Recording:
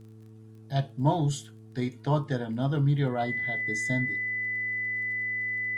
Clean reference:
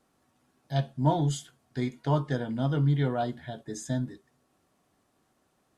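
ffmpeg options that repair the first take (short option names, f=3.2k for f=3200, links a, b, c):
-af "adeclick=t=4,bandreject=f=109.9:t=h:w=4,bandreject=f=219.8:t=h:w=4,bandreject=f=329.7:t=h:w=4,bandreject=f=439.6:t=h:w=4,bandreject=f=2k:w=30"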